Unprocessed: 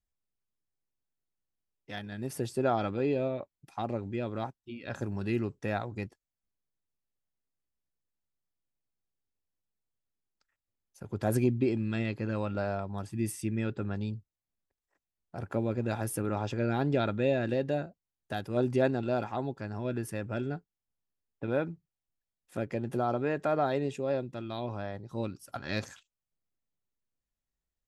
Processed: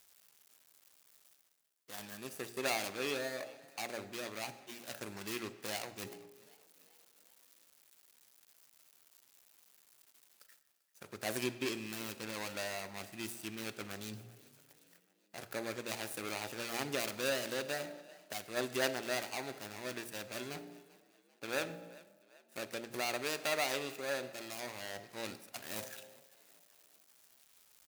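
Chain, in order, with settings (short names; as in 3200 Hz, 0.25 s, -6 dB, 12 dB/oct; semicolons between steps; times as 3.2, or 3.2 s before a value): median filter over 41 samples; differentiator; de-hum 58.6 Hz, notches 15; reverse; upward compressor, threshold -55 dBFS; reverse; frequency-shifting echo 0.391 s, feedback 54%, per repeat +32 Hz, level -22 dB; on a send at -14 dB: reverb RT60 1.1 s, pre-delay 5 ms; on the sum: gain +16.5 dB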